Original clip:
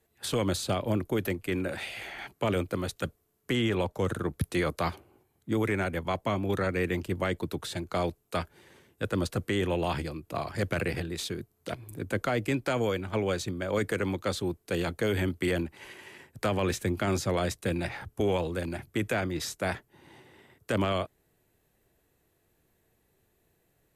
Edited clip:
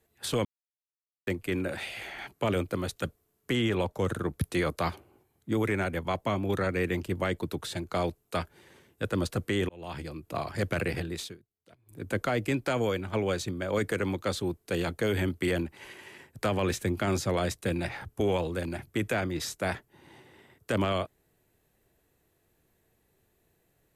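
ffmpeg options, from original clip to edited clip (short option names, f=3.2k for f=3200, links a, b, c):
-filter_complex "[0:a]asplit=6[a][b][c][d][e][f];[a]atrim=end=0.45,asetpts=PTS-STARTPTS,afade=t=out:st=0.446:d=0.004:c=hsin[g];[b]atrim=start=0.45:end=1.27,asetpts=PTS-STARTPTS,volume=0[h];[c]atrim=start=1.27:end=9.69,asetpts=PTS-STARTPTS,afade=t=in:d=0.004:c=hsin,afade=t=out:st=8.416:d=0.004:c=hsin[i];[d]atrim=start=9.69:end=11.39,asetpts=PTS-STARTPTS,afade=t=in:d=0.58,afade=t=out:st=1.45:d=0.25:silence=0.0749894[j];[e]atrim=start=11.39:end=11.85,asetpts=PTS-STARTPTS,volume=-22.5dB[k];[f]atrim=start=11.85,asetpts=PTS-STARTPTS,afade=t=in:d=0.25:silence=0.0749894[l];[g][h][i][j][k][l]concat=n=6:v=0:a=1"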